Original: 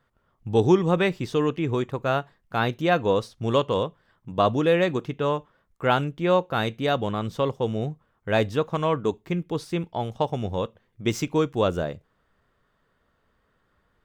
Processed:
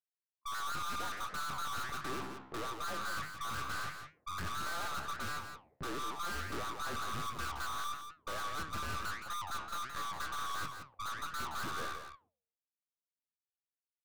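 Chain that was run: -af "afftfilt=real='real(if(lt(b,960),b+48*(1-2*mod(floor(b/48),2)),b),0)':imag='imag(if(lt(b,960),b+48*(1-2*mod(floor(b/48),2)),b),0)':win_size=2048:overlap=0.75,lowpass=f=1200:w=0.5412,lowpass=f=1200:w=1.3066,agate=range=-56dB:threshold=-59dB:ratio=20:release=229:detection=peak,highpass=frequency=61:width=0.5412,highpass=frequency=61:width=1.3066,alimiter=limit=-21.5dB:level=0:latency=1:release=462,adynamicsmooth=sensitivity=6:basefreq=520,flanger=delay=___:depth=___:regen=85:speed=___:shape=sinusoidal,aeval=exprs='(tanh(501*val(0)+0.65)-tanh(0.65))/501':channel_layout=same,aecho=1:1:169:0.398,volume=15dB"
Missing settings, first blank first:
6.2, 9.2, 1.5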